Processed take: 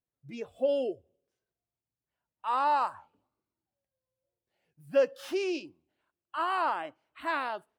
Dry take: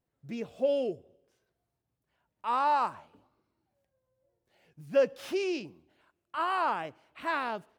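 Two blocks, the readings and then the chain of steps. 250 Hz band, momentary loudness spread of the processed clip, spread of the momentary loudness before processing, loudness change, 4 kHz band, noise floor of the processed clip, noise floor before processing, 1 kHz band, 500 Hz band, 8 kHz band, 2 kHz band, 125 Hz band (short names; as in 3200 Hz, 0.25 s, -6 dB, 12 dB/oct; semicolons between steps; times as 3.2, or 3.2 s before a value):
-1.0 dB, 15 LU, 13 LU, 0.0 dB, 0.0 dB, under -85 dBFS, -84 dBFS, 0.0 dB, 0.0 dB, n/a, 0.0 dB, -6.0 dB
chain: spectral noise reduction 12 dB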